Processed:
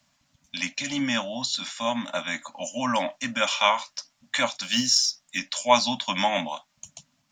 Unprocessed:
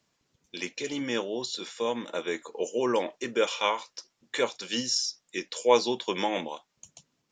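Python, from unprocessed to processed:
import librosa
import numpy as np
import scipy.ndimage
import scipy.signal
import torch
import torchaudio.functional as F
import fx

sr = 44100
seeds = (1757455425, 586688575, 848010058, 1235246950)

y = fx.quant_float(x, sr, bits=4, at=(4.63, 5.38))
y = scipy.signal.sosfilt(scipy.signal.ellip(3, 1.0, 40, [280.0, 580.0], 'bandstop', fs=sr, output='sos'), y)
y = F.gain(torch.from_numpy(y), 7.0).numpy()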